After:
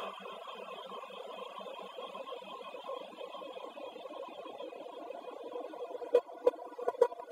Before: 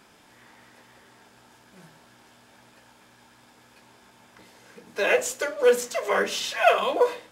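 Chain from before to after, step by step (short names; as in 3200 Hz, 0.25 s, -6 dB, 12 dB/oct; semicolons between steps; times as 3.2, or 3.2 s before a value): Paulstretch 39×, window 0.25 s, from 6.81; reverb removal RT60 0.78 s; gate -18 dBFS, range -18 dB; reverb removal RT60 1.9 s; gain +3 dB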